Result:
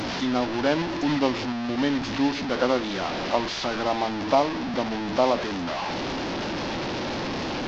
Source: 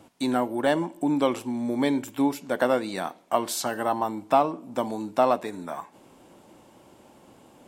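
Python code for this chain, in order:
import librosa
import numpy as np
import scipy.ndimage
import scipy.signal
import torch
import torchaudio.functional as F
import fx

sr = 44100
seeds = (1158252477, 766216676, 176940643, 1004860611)

y = fx.delta_mod(x, sr, bps=32000, step_db=-23.0)
y = fx.formant_shift(y, sr, semitones=-2)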